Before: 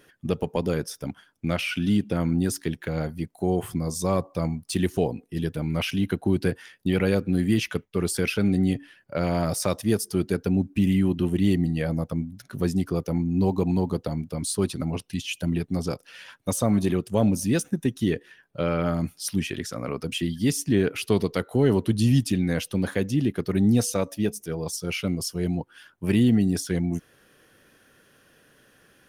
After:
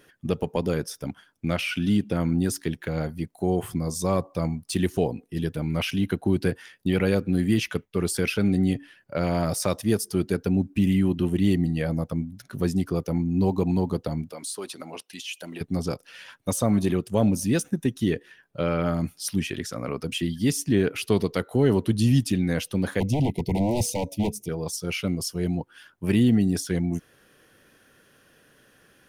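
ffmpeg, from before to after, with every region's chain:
ffmpeg -i in.wav -filter_complex "[0:a]asettb=1/sr,asplit=3[link_01][link_02][link_03];[link_01]atrim=end=14.324[link_04];[link_02]atrim=start=14.32:end=15.61,asetpts=PTS-STARTPTS,afade=type=in:duration=0.004:curve=qsin,afade=type=out:start_time=1.286:duration=0.004:curve=qsin,highpass=480,acompressor=threshold=-32dB:ratio=2:attack=3.2:release=140:knee=1:detection=peak[link_05];[link_03]atrim=start=15.606[link_06];[link_04][link_05]acrossfade=duration=0.004:curve1=hsin:curve2=qsin[link_07];[link_07][link_06]acrossfade=duration=0.004:curve1=qsin:curve2=hsin,asettb=1/sr,asplit=3[link_08][link_09][link_10];[link_08]atrim=end=23.004[link_11];[link_09]atrim=start=23:end=24.49,asetpts=PTS-STARTPTS,afade=type=in:duration=0.004:curve=qsin,afade=type=out:start_time=1.486:duration=0.004:curve=qsin,aeval=exprs='0.0891*(abs(mod(val(0)/0.0891+3,4)-2)-1)':channel_layout=same,asuperstop=centerf=1400:order=20:qfactor=1.4,equalizer=frequency=88:width=0.49:gain=9[link_12];[link_10]atrim=start=24.486[link_13];[link_11][link_12]acrossfade=duration=0.004:curve1=hsin:curve2=qsin[link_14];[link_14][link_13]acrossfade=duration=0.004:curve1=qsin:curve2=hsin" out.wav

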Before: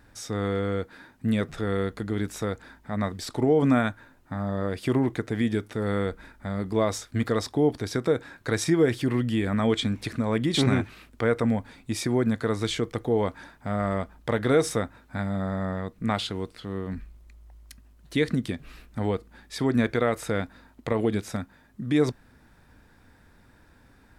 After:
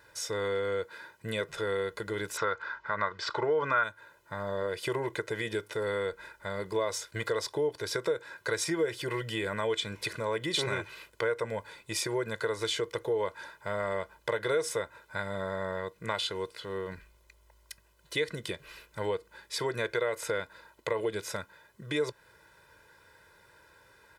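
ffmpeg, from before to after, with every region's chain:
ffmpeg -i in.wav -filter_complex "[0:a]asettb=1/sr,asplit=3[link_01][link_02][link_03];[link_01]atrim=end=2.374[link_04];[link_02]atrim=start=2.37:end=3.84,asetpts=PTS-STARTPTS,afade=type=in:duration=0.004:curve=qsin,afade=type=out:start_time=1.466:duration=0.004:curve=qsin,lowpass=frequency=5500:width=0.5412,lowpass=frequency=5500:width=1.3066,equalizer=frequency=1300:width_type=o:width=1:gain=14[link_05];[link_03]atrim=start=3.836[link_06];[link_04][link_05]acrossfade=duration=0.004:curve1=hsin:curve2=qsin[link_07];[link_07][link_06]acrossfade=duration=0.004:curve1=qsin:curve2=hsin,highpass=frequency=520:poles=1,aecho=1:1:2:0.96,acompressor=threshold=-29dB:ratio=2.5" out.wav

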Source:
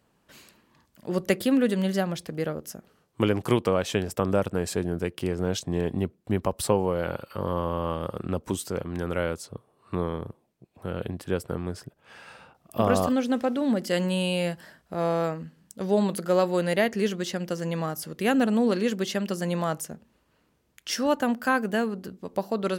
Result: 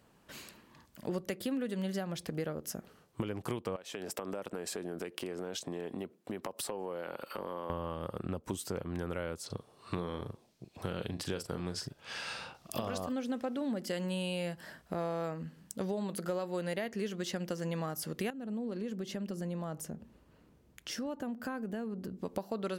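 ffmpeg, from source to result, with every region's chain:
ffmpeg -i in.wav -filter_complex "[0:a]asettb=1/sr,asplit=3[link_01][link_02][link_03];[link_01]atrim=end=3.764[link_04];[link_02]atrim=start=3.76:end=7.7,asetpts=PTS-STARTPTS,afade=type=in:duration=0.004:curve=qsin,afade=type=out:start_time=3.936:duration=0.004:curve=qsin,highpass=260,acompressor=threshold=-37dB:ratio=4:attack=3.2:release=140:knee=1:detection=peak[link_05];[link_03]atrim=start=7.696[link_06];[link_04][link_05]acrossfade=duration=0.004:curve1=hsin:curve2=qsin[link_07];[link_07][link_06]acrossfade=duration=0.004:curve1=qsin:curve2=hsin,asettb=1/sr,asplit=3[link_08][link_09][link_10];[link_08]atrim=end=9.464[link_11];[link_09]atrim=start=9.46:end=12.98,asetpts=PTS-STARTPTS,afade=type=in:duration=0.004:curve=qsin,afade=type=out:start_time=3.516:duration=0.004:curve=qsin,equalizer=frequency=4900:width_type=o:width=1.7:gain=12,asplit=2[link_12][link_13];[link_13]adelay=40,volume=-10dB[link_14];[link_12][link_14]amix=inputs=2:normalize=0,atrim=end_sample=155232[link_15];[link_10]atrim=start=12.976[link_16];[link_11][link_15]acrossfade=duration=0.004:curve1=hsin:curve2=qsin[link_17];[link_17][link_16]acrossfade=duration=0.004:curve1=qsin:curve2=hsin,asettb=1/sr,asplit=3[link_18][link_19][link_20];[link_18]atrim=end=18.304[link_21];[link_19]atrim=start=18.3:end=22.22,asetpts=PTS-STARTPTS,afade=type=in:duration=0.004:curve=qsin,afade=type=out:start_time=3.916:duration=0.004:curve=qsin,tiltshelf=frequency=640:gain=5,acompressor=threshold=-45dB:ratio=2:attack=3.2:release=140:knee=1:detection=peak[link_22];[link_20]atrim=start=22.216[link_23];[link_21][link_22]acrossfade=duration=0.004:curve1=hsin:curve2=qsin[link_24];[link_24][link_23]acrossfade=duration=0.004:curve1=qsin:curve2=hsin,alimiter=limit=-15.5dB:level=0:latency=1:release=473,acompressor=threshold=-37dB:ratio=4,volume=2.5dB" out.wav

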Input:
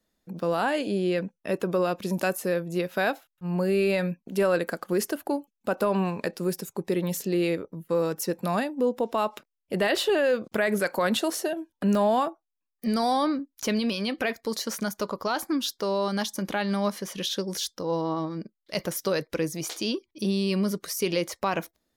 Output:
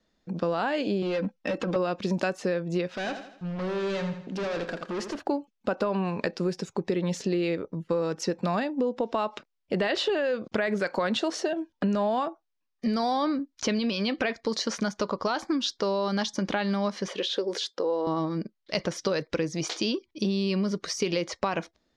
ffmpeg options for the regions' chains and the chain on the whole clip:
ffmpeg -i in.wav -filter_complex "[0:a]asettb=1/sr,asplit=3[link_01][link_02][link_03];[link_01]atrim=end=1.024[link_04];[link_02]atrim=start=1.02:end=1.76,asetpts=PTS-STARTPTS,afade=type=in:duration=0.004:curve=qsin,afade=type=out:start_time=0.736:duration=0.004:curve=qsin,aecho=1:1:3.8:0.87,atrim=end_sample=32634,acompressor=threshold=-26dB:ratio=6:attack=3.2:release=140:knee=1:detection=peak,volume=27dB,asoftclip=hard,volume=-27dB[link_05];[link_03]atrim=start=1.756[link_06];[link_04][link_05]acrossfade=duration=0.004:curve1=hsin:curve2=qsin[link_07];[link_07][link_06]acrossfade=duration=0.004:curve1=qsin:curve2=hsin,asettb=1/sr,asplit=3[link_08][link_09][link_10];[link_08]atrim=end=2.964[link_11];[link_09]atrim=start=2.96:end=5.2,asetpts=PTS-STARTPTS,afade=type=in:duration=0.004:curve=qsin,afade=type=out:start_time=2.236:duration=0.004:curve=qsin,volume=30.5dB,asoftclip=hard,volume=-30.5dB,acompressor=threshold=-41dB:ratio=1.5:attack=3.2:release=140:knee=1:detection=peak,aecho=1:1:82|164|246|328|410:0.355|0.16|0.0718|0.0323|0.0145,atrim=end_sample=98784[link_12];[link_10]atrim=start=5.196[link_13];[link_11][link_12]acrossfade=duration=0.004:curve1=hsin:curve2=qsin[link_14];[link_14][link_13]acrossfade=duration=0.004:curve1=qsin:curve2=hsin,asettb=1/sr,asplit=3[link_15][link_16][link_17];[link_15]atrim=end=17.084[link_18];[link_16]atrim=start=17.08:end=18.07,asetpts=PTS-STARTPTS,afade=type=in:duration=0.004:curve=qsin,afade=type=out:start_time=0.986:duration=0.004:curve=qsin,equalizer=frequency=5800:width_type=o:width=0.48:gain=-7.5,acompressor=threshold=-31dB:ratio=2.5:attack=3.2:release=140:knee=1:detection=peak,highpass=frequency=420:width_type=q:width=2.3[link_19];[link_17]atrim=start=18.066[link_20];[link_18][link_19]acrossfade=duration=0.004:curve1=hsin:curve2=qsin[link_21];[link_21][link_20]acrossfade=duration=0.004:curve1=qsin:curve2=hsin,lowpass=frequency=6000:width=0.5412,lowpass=frequency=6000:width=1.3066,acompressor=threshold=-28dB:ratio=6,volume=4.5dB" out.wav

